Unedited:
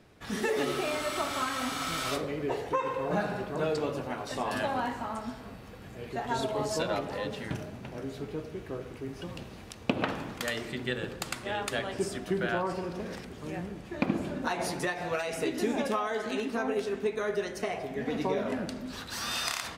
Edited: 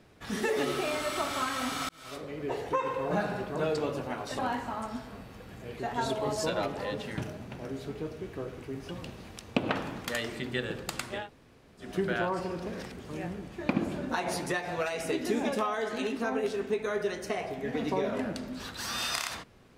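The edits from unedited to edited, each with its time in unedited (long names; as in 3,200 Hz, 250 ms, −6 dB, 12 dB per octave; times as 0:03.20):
0:01.89–0:02.66: fade in
0:04.39–0:04.72: remove
0:11.55–0:12.18: fill with room tone, crossfade 0.16 s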